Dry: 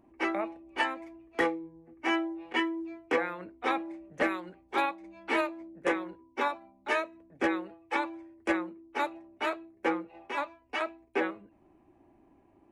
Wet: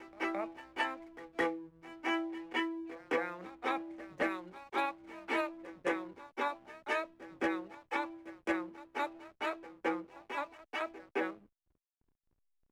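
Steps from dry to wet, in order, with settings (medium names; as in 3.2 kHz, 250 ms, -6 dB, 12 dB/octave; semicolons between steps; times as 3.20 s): pre-echo 217 ms -17.5 dB; gate with hold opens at -52 dBFS; hysteresis with a dead band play -49 dBFS; trim -5 dB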